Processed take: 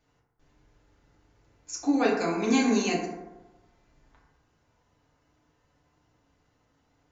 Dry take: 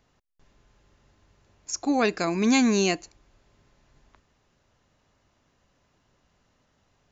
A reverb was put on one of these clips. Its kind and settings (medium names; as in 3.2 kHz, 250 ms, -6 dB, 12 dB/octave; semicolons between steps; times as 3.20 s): FDN reverb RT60 1.1 s, low-frequency decay 0.9×, high-frequency decay 0.35×, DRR -5 dB; trim -8 dB